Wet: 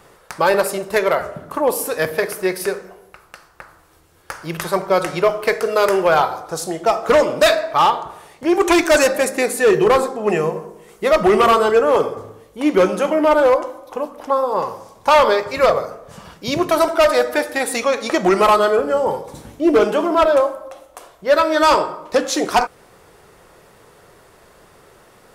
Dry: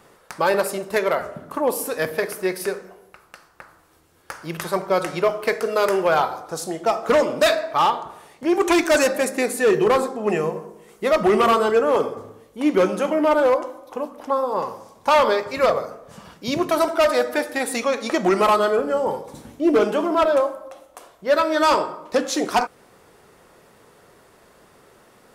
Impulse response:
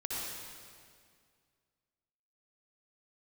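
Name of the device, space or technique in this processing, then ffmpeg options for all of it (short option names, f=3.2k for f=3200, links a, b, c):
low shelf boost with a cut just above: -af "lowshelf=f=67:g=7,equalizer=f=240:t=o:w=0.54:g=-5,volume=4dB"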